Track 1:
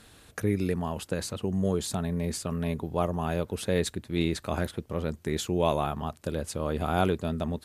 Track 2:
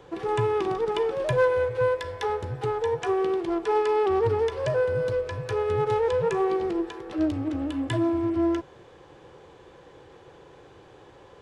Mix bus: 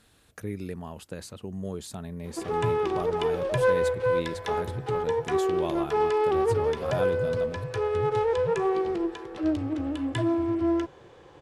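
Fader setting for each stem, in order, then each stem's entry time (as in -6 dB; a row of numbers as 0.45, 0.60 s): -7.5, -1.0 dB; 0.00, 2.25 s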